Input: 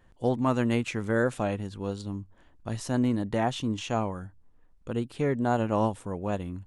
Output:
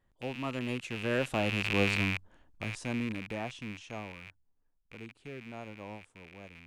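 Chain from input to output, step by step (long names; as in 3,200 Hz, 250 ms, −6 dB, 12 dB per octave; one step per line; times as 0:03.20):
loose part that buzzes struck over −43 dBFS, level −20 dBFS
source passing by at 0:01.86, 15 m/s, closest 4.1 metres
level +3.5 dB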